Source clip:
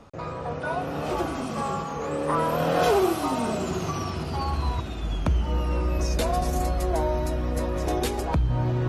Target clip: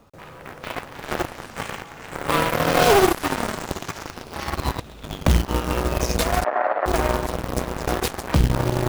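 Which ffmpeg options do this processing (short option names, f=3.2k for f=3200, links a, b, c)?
-filter_complex "[0:a]aeval=exprs='0.282*(cos(1*acos(clip(val(0)/0.282,-1,1)))-cos(1*PI/2))+0.0398*(cos(2*acos(clip(val(0)/0.282,-1,1)))-cos(2*PI/2))+0.00316*(cos(5*acos(clip(val(0)/0.282,-1,1)))-cos(5*PI/2))+0.0562*(cos(7*acos(clip(val(0)/0.282,-1,1)))-cos(7*PI/2))+0.00178*(cos(8*acos(clip(val(0)/0.282,-1,1)))-cos(8*PI/2))':c=same,acrusher=bits=3:mode=log:mix=0:aa=0.000001,asettb=1/sr,asplit=3[a][b][c];[a]atrim=end=6.444[d];[b]atrim=start=6.44:end=6.86,asetpts=PTS-STARTPTS,afade=t=in:d=0.004:c=qsin,afade=t=out:st=0.416:d=0.004:c=qsin,highpass=f=370:w=0.5412,highpass=f=370:w=1.3066,equalizer=f=370:t=q:w=4:g=-7,equalizer=f=620:t=q:w=4:g=8,equalizer=f=890:t=q:w=4:g=4,equalizer=f=1.3k:t=q:w=4:g=5,equalizer=f=1.8k:t=q:w=4:g=7,lowpass=f=2.2k:w=0.5412,lowpass=f=2.2k:w=1.3066[e];[c]atrim=start=6.856[f];[d][e]acrossfade=d=0.004:c1=hsin:c2=qsin[g];[g][f]acrossfade=d=0.004:c1=qsin:c2=hsin,volume=5dB"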